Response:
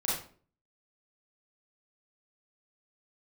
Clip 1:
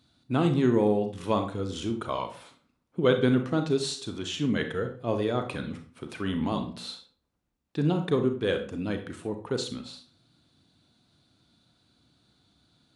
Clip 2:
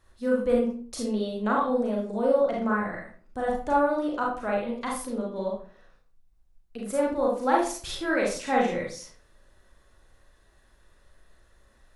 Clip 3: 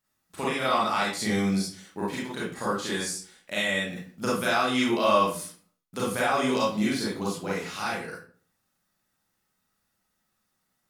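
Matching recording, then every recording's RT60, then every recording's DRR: 3; 0.45, 0.45, 0.45 seconds; 6.0, −3.5, −7.5 decibels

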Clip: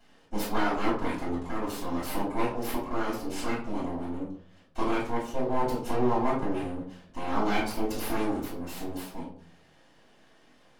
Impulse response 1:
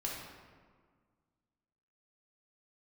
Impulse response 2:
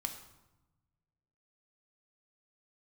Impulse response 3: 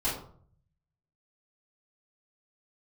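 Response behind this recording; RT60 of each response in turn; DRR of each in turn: 3; 1.7, 1.0, 0.55 seconds; −3.5, 5.0, −11.0 decibels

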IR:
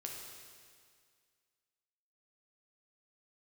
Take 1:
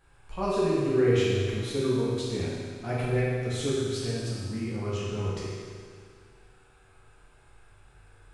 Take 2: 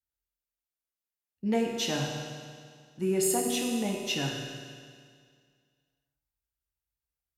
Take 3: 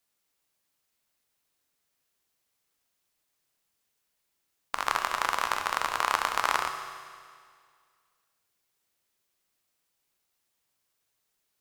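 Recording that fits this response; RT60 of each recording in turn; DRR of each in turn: 2; 2.0, 2.0, 2.0 seconds; −8.0, −0.5, 5.0 decibels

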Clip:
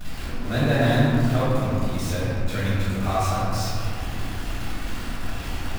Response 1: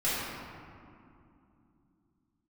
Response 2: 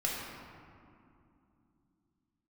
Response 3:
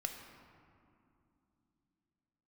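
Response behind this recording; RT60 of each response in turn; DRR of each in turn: 1; 2.7, 2.7, 2.7 seconds; −11.5, −4.0, 4.0 decibels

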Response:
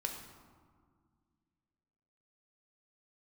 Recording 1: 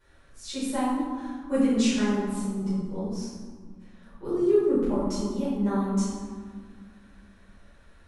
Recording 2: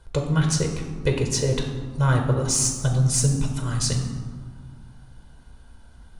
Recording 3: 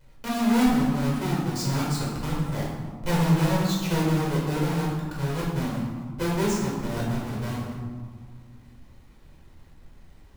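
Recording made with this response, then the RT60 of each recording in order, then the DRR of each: 2; 1.9, 1.9, 1.9 seconds; −13.5, 2.5, −5.5 decibels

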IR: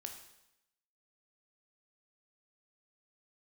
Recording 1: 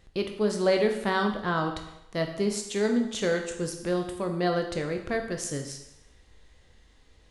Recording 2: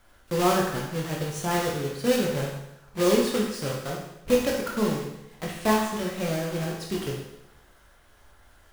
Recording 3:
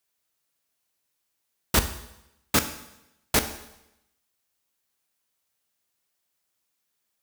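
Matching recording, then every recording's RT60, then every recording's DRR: 1; 0.85, 0.85, 0.85 seconds; 4.0, −2.0, 8.5 decibels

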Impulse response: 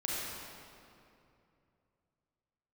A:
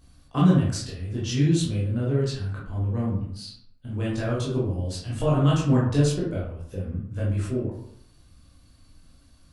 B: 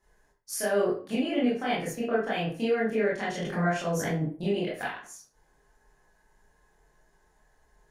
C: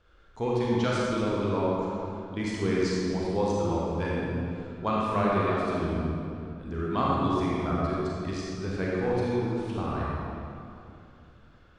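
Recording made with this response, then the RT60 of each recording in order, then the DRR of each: C; 0.65, 0.40, 2.7 seconds; −7.0, −8.5, −6.0 decibels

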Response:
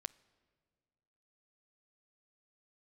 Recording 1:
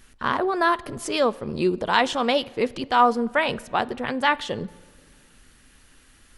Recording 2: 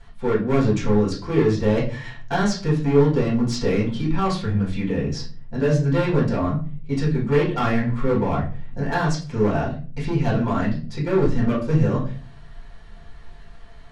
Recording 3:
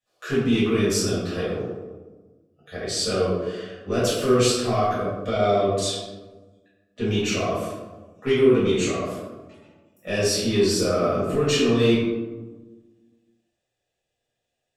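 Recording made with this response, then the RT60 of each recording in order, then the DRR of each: 1; 1.8, 0.40, 1.3 seconds; 17.0, −6.5, −10.5 decibels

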